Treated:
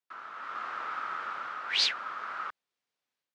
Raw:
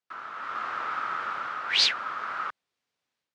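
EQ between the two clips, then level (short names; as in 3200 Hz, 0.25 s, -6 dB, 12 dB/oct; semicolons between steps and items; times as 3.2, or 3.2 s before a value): low shelf 110 Hz -10 dB; -4.5 dB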